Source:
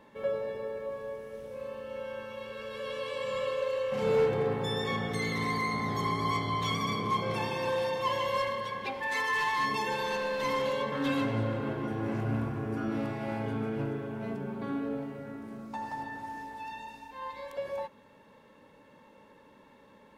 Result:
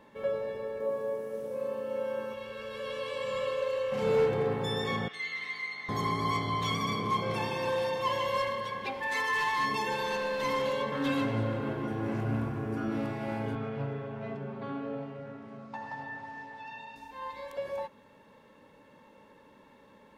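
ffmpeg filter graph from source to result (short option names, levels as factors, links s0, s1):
-filter_complex "[0:a]asettb=1/sr,asplit=3[s0][s1][s2];[s0]atrim=end=0.804[s3];[s1]atrim=start=0.8:end=2.34,asetpts=PTS-STARTPTS,afade=t=in:d=0.004:c=qsin,afade=t=out:st=1.536:d=0.004:c=qsin,highpass=180,equalizer=f=2900:t=o:w=2.6:g=-9.5,acontrast=88[s4];[s2]atrim=start=2.336[s5];[s3][s4]acrossfade=d=0.004:c1=hsin:c2=qsin[s6];[s6][s5]acrossfade=d=0.004:c1=qsin:c2=hsin,asettb=1/sr,asplit=3[s7][s8][s9];[s7]atrim=end=5.084[s10];[s8]atrim=start=5.08:end=5.89,asetpts=PTS-STARTPTS,afade=t=in:d=0.004:c=qsin,afade=t=out:st=0.806:d=0.004:c=qsin,bandpass=f=2600:t=q:w=1.8,asplit=2[s11][s12];[s12]adelay=12,volume=0.596[s13];[s11][s13]amix=inputs=2:normalize=0,atrim=end_sample=35721[s14];[s9]atrim=start=5.886[s15];[s10][s14]acrossfade=d=0.004:c1=hsin:c2=qsin[s16];[s16][s15]acrossfade=d=0.004:c1=qsin:c2=hsin,asettb=1/sr,asplit=3[s17][s18][s19];[s17]atrim=end=13.554[s20];[s18]atrim=start=13.55:end=16.96,asetpts=PTS-STARTPTS,afade=t=in:d=0.004:c=qsin,afade=t=out:st=3.406:d=0.004:c=qsin,highpass=110,lowpass=4100,equalizer=f=320:w=3.1:g=-13,aecho=1:1:7.4:0.42,atrim=end_sample=150381[s21];[s19]atrim=start=16.956[s22];[s20][s21]acrossfade=d=0.004:c1=hsin:c2=qsin[s23];[s23][s22]acrossfade=d=0.004:c1=qsin:c2=hsin"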